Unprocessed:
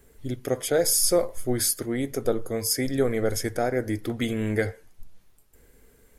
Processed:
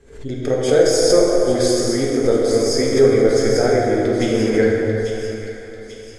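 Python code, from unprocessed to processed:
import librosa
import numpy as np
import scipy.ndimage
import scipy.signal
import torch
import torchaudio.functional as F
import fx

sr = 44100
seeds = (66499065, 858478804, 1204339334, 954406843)

p1 = scipy.signal.sosfilt(scipy.signal.butter(4, 7300.0, 'lowpass', fs=sr, output='sos'), x)
p2 = fx.peak_eq(p1, sr, hz=420.0, db=6.0, octaves=0.63)
p3 = p2 + fx.echo_wet_highpass(p2, sr, ms=842, feedback_pct=51, hz=2800.0, wet_db=-6, dry=0)
p4 = fx.rev_plate(p3, sr, seeds[0], rt60_s=3.6, hf_ratio=0.45, predelay_ms=0, drr_db=-4.0)
p5 = fx.pre_swell(p4, sr, db_per_s=110.0)
y = p5 * librosa.db_to_amplitude(1.5)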